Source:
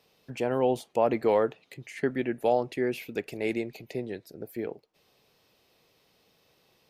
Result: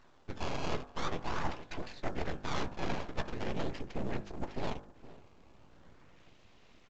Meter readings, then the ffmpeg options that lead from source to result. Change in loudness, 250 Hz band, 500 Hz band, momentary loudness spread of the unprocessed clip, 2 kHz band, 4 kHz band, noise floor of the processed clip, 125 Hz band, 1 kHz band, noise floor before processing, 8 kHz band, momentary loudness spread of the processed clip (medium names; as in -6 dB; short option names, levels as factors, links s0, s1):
-10.0 dB, -9.0 dB, -14.0 dB, 15 LU, -4.0 dB, +1.0 dB, -60 dBFS, -0.5 dB, -6.5 dB, -68 dBFS, -1.5 dB, 9 LU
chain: -filter_complex "[0:a]afftfilt=real='hypot(re,im)*cos(2*PI*random(0))':imag='hypot(re,im)*sin(2*PI*random(1))':win_size=512:overlap=0.75,acrusher=samples=15:mix=1:aa=0.000001:lfo=1:lforange=24:lforate=0.42,lowpass=3000,asplit=2[s0][s1];[s1]adelay=16,volume=0.224[s2];[s0][s2]amix=inputs=2:normalize=0,asplit=2[s3][s4];[s4]adelay=466.5,volume=0.0631,highshelf=f=4000:g=-10.5[s5];[s3][s5]amix=inputs=2:normalize=0,asubboost=boost=4:cutoff=190,areverse,acompressor=threshold=0.00891:ratio=12,areverse,aeval=exprs='abs(val(0))':c=same,bandreject=f=50.77:t=h:w=4,bandreject=f=101.54:t=h:w=4,bandreject=f=152.31:t=h:w=4,bandreject=f=203.08:t=h:w=4,bandreject=f=253.85:t=h:w=4,bandreject=f=304.62:t=h:w=4,bandreject=f=355.39:t=h:w=4,bandreject=f=406.16:t=h:w=4,bandreject=f=456.93:t=h:w=4,bandreject=f=507.7:t=h:w=4,bandreject=f=558.47:t=h:w=4,bandreject=f=609.24:t=h:w=4,bandreject=f=660.01:t=h:w=4,bandreject=f=710.78:t=h:w=4,bandreject=f=761.55:t=h:w=4,bandreject=f=812.32:t=h:w=4,bandreject=f=863.09:t=h:w=4,bandreject=f=913.86:t=h:w=4,bandreject=f=964.63:t=h:w=4,bandreject=f=1015.4:t=h:w=4,bandreject=f=1066.17:t=h:w=4,bandreject=f=1116.94:t=h:w=4,bandreject=f=1167.71:t=h:w=4,bandreject=f=1218.48:t=h:w=4,bandreject=f=1269.25:t=h:w=4,bandreject=f=1320.02:t=h:w=4,bandreject=f=1370.79:t=h:w=4,bandreject=f=1421.56:t=h:w=4,bandreject=f=1472.33:t=h:w=4,bandreject=f=1523.1:t=h:w=4,bandreject=f=1573.87:t=h:w=4,bandreject=f=1624.64:t=h:w=4,bandreject=f=1675.41:t=h:w=4,bandreject=f=1726.18:t=h:w=4,bandreject=f=1776.95:t=h:w=4,volume=4.22" -ar 16000 -c:a pcm_mulaw